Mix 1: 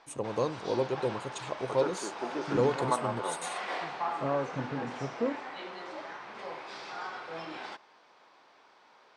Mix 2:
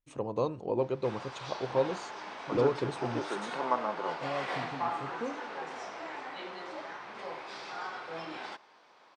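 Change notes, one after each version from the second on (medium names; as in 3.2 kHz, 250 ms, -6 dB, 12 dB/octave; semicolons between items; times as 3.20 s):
first voice: add distance through air 130 m; second voice -6.5 dB; background: entry +0.80 s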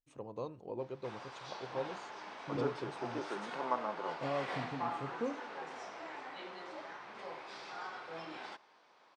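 first voice -11.0 dB; background -5.0 dB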